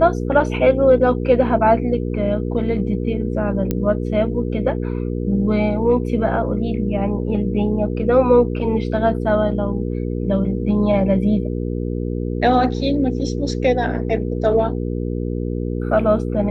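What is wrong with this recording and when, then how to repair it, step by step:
hum 60 Hz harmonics 8 -23 dBFS
3.71 s: pop -8 dBFS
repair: de-click; de-hum 60 Hz, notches 8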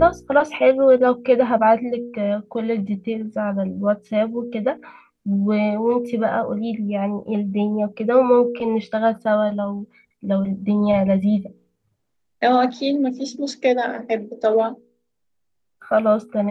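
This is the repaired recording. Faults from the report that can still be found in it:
nothing left

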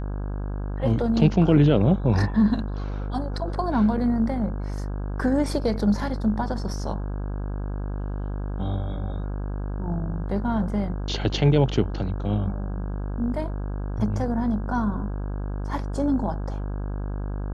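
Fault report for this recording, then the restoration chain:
buzz 50 Hz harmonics 33 -29 dBFS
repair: de-hum 50 Hz, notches 33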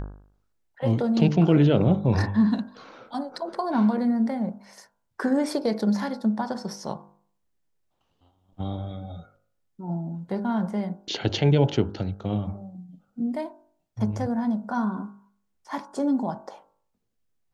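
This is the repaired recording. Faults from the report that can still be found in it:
nothing left

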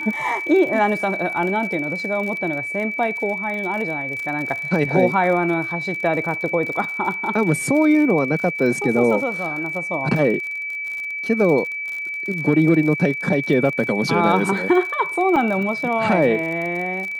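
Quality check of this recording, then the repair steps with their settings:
crackle 51 per s -27 dBFS
whine 2.3 kHz -25 dBFS
15.36 s: dropout 3.9 ms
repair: de-click; band-stop 2.3 kHz, Q 30; interpolate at 15.36 s, 3.9 ms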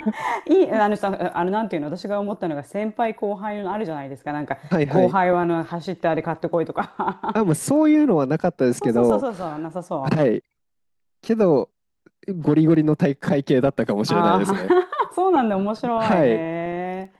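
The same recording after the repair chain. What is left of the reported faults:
nothing left

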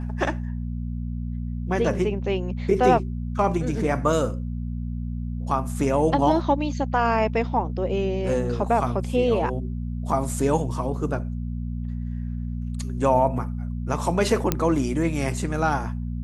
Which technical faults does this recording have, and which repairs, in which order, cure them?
hum 60 Hz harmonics 4 -29 dBFS
14.52 s: pop -5 dBFS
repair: de-click; de-hum 60 Hz, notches 4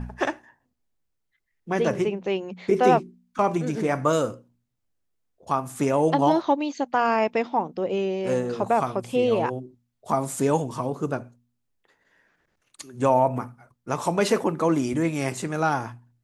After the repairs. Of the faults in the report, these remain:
nothing left

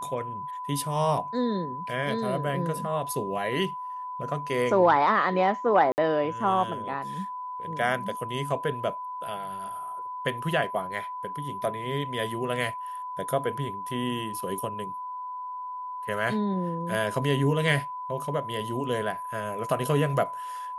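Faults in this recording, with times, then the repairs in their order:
whine 1 kHz -33 dBFS
5.92–5.98 s: dropout 59 ms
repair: band-stop 1 kHz, Q 30; interpolate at 5.92 s, 59 ms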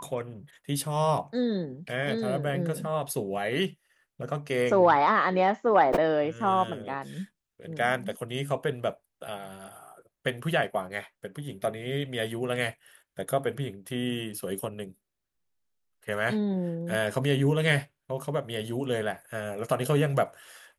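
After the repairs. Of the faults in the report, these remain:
nothing left

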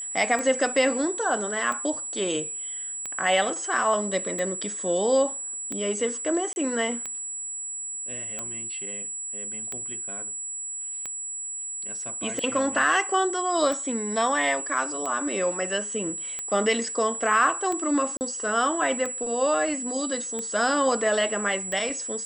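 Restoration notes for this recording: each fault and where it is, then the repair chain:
tick 45 rpm -18 dBFS
whine 7.8 kHz -31 dBFS
6.53–6.56 s: dropout 31 ms
18.17–18.21 s: dropout 39 ms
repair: de-click; band-stop 7.8 kHz, Q 30; interpolate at 6.53 s, 31 ms; interpolate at 18.17 s, 39 ms

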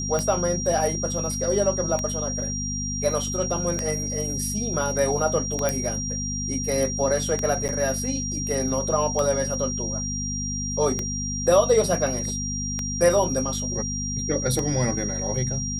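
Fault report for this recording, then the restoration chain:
hum 50 Hz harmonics 5 -31 dBFS
tick 33 1/3 rpm -12 dBFS
whine 5.7 kHz -29 dBFS
5.69 s: pop
7.68–7.69 s: dropout 9 ms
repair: de-click; de-hum 50 Hz, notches 5; band-stop 5.7 kHz, Q 30; interpolate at 7.68 s, 9 ms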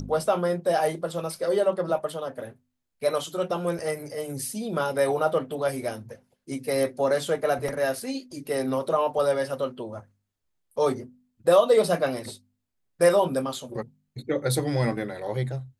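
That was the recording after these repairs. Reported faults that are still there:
nothing left

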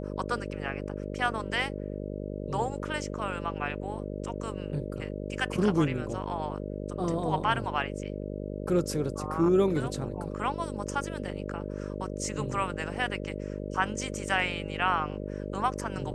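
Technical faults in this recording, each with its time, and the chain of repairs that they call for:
buzz 50 Hz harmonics 12 -36 dBFS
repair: de-hum 50 Hz, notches 12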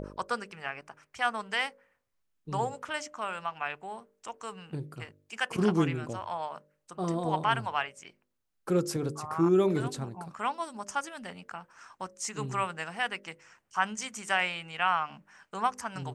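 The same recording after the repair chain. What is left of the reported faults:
nothing left

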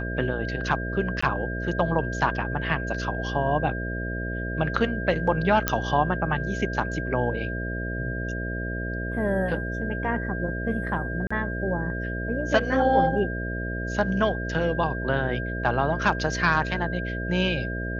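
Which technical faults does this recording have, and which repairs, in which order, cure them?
buzz 60 Hz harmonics 11 -31 dBFS
whine 1.6 kHz -33 dBFS
1.21–1.23 s: dropout 15 ms
5.68 s: pop -4 dBFS
11.27–11.30 s: dropout 35 ms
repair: de-click; band-stop 1.6 kHz, Q 30; de-hum 60 Hz, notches 11; interpolate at 1.21 s, 15 ms; interpolate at 11.27 s, 35 ms

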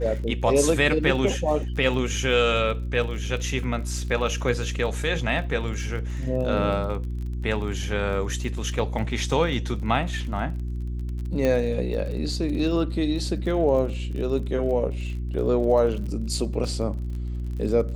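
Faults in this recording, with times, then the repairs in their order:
crackle 29 per s -33 dBFS
hum 60 Hz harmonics 6 -29 dBFS
11.45 s: pop -13 dBFS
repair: de-click; de-hum 60 Hz, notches 6

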